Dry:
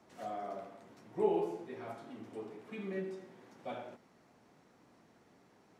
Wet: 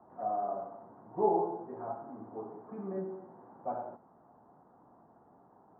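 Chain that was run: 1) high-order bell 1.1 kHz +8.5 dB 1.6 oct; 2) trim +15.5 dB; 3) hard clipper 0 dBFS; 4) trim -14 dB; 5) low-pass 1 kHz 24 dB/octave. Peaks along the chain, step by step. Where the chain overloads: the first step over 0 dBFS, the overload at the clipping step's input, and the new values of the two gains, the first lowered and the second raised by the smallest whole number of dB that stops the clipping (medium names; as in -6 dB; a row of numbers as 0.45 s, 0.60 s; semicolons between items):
-17.5 dBFS, -2.0 dBFS, -2.0 dBFS, -16.0 dBFS, -16.5 dBFS; nothing clips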